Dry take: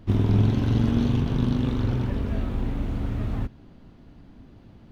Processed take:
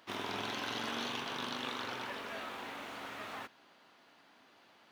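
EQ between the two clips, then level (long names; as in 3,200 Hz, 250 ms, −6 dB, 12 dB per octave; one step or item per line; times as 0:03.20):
high-pass filter 980 Hz 12 dB per octave
+3.0 dB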